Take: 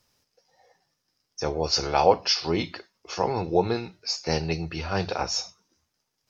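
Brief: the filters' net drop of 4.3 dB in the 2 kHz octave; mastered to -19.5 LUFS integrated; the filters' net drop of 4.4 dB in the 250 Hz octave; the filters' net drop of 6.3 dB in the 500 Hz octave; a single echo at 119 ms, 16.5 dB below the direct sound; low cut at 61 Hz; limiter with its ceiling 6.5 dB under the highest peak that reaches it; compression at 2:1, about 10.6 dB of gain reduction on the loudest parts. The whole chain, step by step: high-pass 61 Hz; peaking EQ 250 Hz -4.5 dB; peaking EQ 500 Hz -6 dB; peaking EQ 2 kHz -5.5 dB; compression 2:1, threshold -37 dBFS; peak limiter -26 dBFS; delay 119 ms -16.5 dB; trim +19 dB

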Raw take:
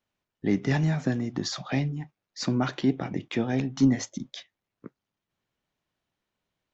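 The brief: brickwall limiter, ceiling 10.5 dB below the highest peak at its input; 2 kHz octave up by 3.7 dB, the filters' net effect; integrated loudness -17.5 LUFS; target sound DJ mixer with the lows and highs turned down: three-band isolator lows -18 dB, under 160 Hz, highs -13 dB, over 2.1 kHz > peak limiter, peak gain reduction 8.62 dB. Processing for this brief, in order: peaking EQ 2 kHz +8 dB; peak limiter -20.5 dBFS; three-band isolator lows -18 dB, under 160 Hz, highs -13 dB, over 2.1 kHz; trim +21.5 dB; peak limiter -8 dBFS

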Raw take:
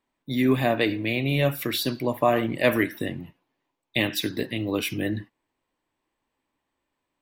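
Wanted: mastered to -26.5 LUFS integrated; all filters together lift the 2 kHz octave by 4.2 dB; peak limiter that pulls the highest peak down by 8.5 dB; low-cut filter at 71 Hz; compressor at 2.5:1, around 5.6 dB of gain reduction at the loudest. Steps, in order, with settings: high-pass 71 Hz; peaking EQ 2 kHz +5 dB; compression 2.5:1, threshold -23 dBFS; trim +2 dB; peak limiter -14.5 dBFS

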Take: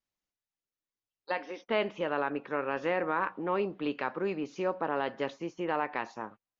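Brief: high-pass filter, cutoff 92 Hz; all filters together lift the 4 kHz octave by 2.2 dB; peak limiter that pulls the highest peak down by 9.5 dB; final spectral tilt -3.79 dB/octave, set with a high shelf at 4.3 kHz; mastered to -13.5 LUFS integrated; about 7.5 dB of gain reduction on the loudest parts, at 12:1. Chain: high-pass 92 Hz; peaking EQ 4 kHz +7.5 dB; treble shelf 4.3 kHz -7.5 dB; compression 12:1, threshold -32 dBFS; trim +28 dB; peak limiter -1.5 dBFS

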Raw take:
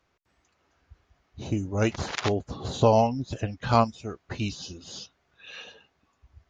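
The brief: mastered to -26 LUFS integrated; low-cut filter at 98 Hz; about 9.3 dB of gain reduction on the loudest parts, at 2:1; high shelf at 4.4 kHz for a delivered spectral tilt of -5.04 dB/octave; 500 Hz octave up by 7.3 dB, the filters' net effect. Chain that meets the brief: high-pass 98 Hz; peaking EQ 500 Hz +9 dB; treble shelf 4.4 kHz +4.5 dB; compression 2:1, threshold -26 dBFS; trim +4 dB

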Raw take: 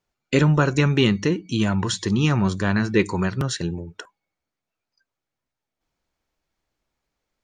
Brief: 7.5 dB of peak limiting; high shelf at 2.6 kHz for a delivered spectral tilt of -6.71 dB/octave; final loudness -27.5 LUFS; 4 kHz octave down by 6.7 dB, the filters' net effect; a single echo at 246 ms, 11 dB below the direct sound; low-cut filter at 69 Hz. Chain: high-pass 69 Hz; treble shelf 2.6 kHz -4 dB; peaking EQ 4 kHz -6 dB; peak limiter -12.5 dBFS; delay 246 ms -11 dB; trim -4 dB

